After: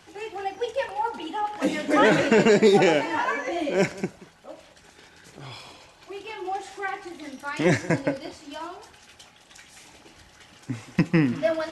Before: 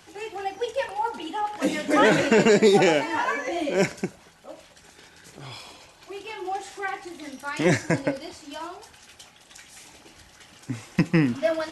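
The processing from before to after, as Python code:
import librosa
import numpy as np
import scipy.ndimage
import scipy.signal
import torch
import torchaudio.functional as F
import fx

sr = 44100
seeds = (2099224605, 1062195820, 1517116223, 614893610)

y = fx.high_shelf(x, sr, hz=6900.0, db=-6.5)
y = y + 10.0 ** (-19.0 / 20.0) * np.pad(y, (int(182 * sr / 1000.0), 0))[:len(y)]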